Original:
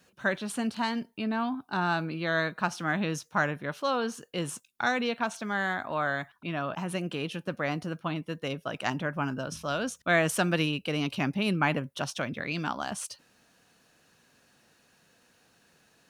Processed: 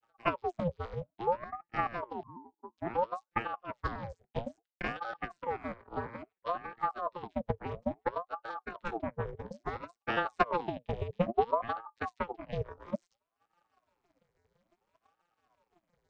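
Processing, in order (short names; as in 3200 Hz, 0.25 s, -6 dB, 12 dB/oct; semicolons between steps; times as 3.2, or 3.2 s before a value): arpeggiated vocoder bare fifth, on A#2, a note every 84 ms; transient shaper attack +10 dB, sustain -12 dB; 2.23–2.78 Butterworth band-pass 610 Hz, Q 5.7; ring modulator with a swept carrier 650 Hz, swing 60%, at 0.59 Hz; gain -5.5 dB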